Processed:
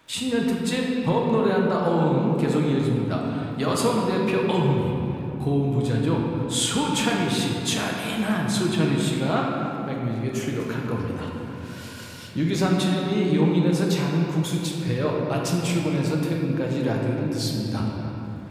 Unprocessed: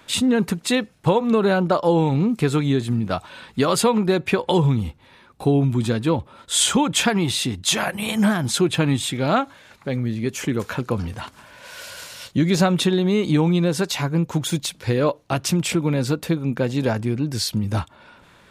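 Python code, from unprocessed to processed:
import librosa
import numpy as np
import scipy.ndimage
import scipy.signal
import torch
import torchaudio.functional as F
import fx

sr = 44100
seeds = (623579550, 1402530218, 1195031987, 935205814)

y = fx.dmg_crackle(x, sr, seeds[0], per_s=93.0, level_db=-45.0)
y = fx.room_shoebox(y, sr, seeds[1], volume_m3=200.0, walls='hard', distance_m=0.6)
y = y * librosa.db_to_amplitude(-7.5)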